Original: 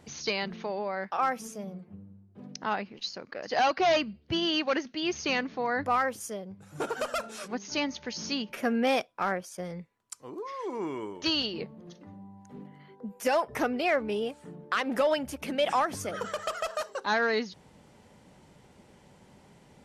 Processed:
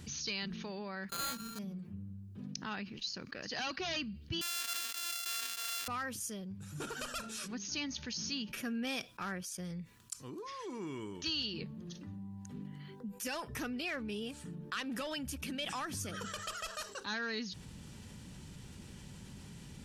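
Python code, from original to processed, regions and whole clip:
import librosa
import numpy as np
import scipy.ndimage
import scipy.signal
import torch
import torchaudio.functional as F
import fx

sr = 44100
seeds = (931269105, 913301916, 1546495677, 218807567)

y = fx.chain(x, sr, fx.sample_sort(block=32),
    fx.resample_bad(factor=8, down='filtered', up='hold'), at=(1.09, 1.59))
y = fx.chain(y, sr, fx.sample_sort(block=64),
    fx.highpass(hz=1300.0, slope=12),
    fx.sustainer(db_per_s=45.0), at=(4.41, 5.88))
y = fx.tone_stack(y, sr, knobs='6-0-2')
y = fx.notch(y, sr, hz=2100.0, q=10.0)
y = fx.env_flatten(y, sr, amount_pct=50)
y = y * librosa.db_to_amplitude(8.5)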